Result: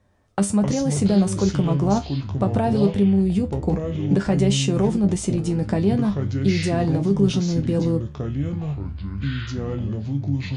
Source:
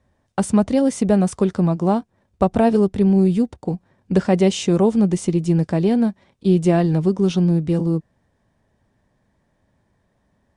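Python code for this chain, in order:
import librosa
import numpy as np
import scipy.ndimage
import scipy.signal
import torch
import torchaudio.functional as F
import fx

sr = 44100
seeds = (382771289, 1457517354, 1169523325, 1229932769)

p1 = fx.over_compress(x, sr, threshold_db=-19.0, ratio=-0.5)
p2 = x + (p1 * librosa.db_to_amplitude(2.0))
p3 = fx.comb_fb(p2, sr, f0_hz=100.0, decay_s=0.18, harmonics='all', damping=0.0, mix_pct=80)
p4 = fx.echo_pitch(p3, sr, ms=101, semitones=-6, count=3, db_per_echo=-6.0)
y = p4 * librosa.db_to_amplitude(-2.0)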